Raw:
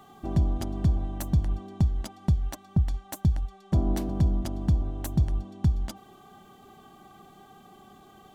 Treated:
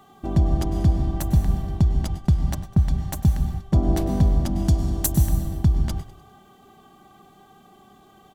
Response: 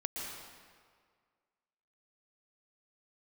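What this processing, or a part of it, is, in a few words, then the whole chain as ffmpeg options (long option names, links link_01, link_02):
keyed gated reverb: -filter_complex "[0:a]asettb=1/sr,asplit=3[link_01][link_02][link_03];[link_01]atrim=end=4.664[link_04];[link_02]atrim=start=4.66:end=5.12,asetpts=PTS-STARTPTS,afade=type=in:duration=0.004:curve=qsin,afade=type=out:start_time=0.456:duration=0.004:curve=qsin,bass=frequency=250:gain=-1,treble=frequency=4000:gain=13[link_05];[link_03]atrim=start=5.116[link_06];[link_04][link_05]acrossfade=duration=0.004:curve1=hsin:curve2=qsin[link_07];[link_07][link_06]acrossfade=duration=0.004:curve1=qsin:curve2=hsin,asplit=3[link_08][link_09][link_10];[1:a]atrim=start_sample=2205[link_11];[link_09][link_11]afir=irnorm=-1:irlink=0[link_12];[link_10]apad=whole_len=367992[link_13];[link_12][link_13]sidechaingate=range=-33dB:threshold=-44dB:ratio=16:detection=peak,volume=-1.5dB[link_14];[link_08][link_14]amix=inputs=2:normalize=0,asplit=5[link_15][link_16][link_17][link_18][link_19];[link_16]adelay=100,afreqshift=-52,volume=-17.5dB[link_20];[link_17]adelay=200,afreqshift=-104,volume=-24.4dB[link_21];[link_18]adelay=300,afreqshift=-156,volume=-31.4dB[link_22];[link_19]adelay=400,afreqshift=-208,volume=-38.3dB[link_23];[link_15][link_20][link_21][link_22][link_23]amix=inputs=5:normalize=0"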